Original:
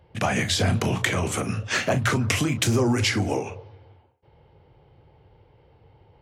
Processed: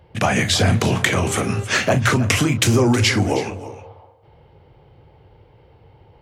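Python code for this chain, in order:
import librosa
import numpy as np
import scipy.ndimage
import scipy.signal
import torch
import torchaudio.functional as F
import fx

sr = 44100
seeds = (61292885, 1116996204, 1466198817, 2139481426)

p1 = fx.dmg_buzz(x, sr, base_hz=400.0, harmonics=36, level_db=-38.0, tilt_db=-9, odd_only=False, at=(1.13, 1.63), fade=0.02)
p2 = fx.spec_box(p1, sr, start_s=3.64, length_s=0.58, low_hz=450.0, high_hz=1300.0, gain_db=10)
p3 = p2 + fx.echo_single(p2, sr, ms=318, db=-15.0, dry=0)
y = p3 * librosa.db_to_amplitude(5.5)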